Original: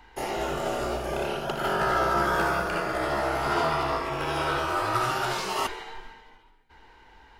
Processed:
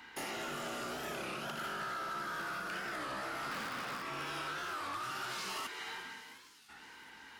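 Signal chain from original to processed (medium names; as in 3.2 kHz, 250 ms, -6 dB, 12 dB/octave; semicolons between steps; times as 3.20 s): 3.51–4.02 s: cycle switcher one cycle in 2, inverted; high-pass 210 Hz 12 dB/octave; high-order bell 580 Hz -9 dB; compression 6:1, threshold -39 dBFS, peak gain reduction 15 dB; saturation -39 dBFS, distortion -13 dB; on a send: feedback echo behind a high-pass 357 ms, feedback 75%, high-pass 4.3 kHz, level -12.5 dB; on the sum: warped record 33 1/3 rpm, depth 160 cents; trim +4 dB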